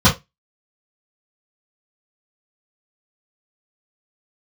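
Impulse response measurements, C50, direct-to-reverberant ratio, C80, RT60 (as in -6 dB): 12.5 dB, -11.5 dB, 23.5 dB, not exponential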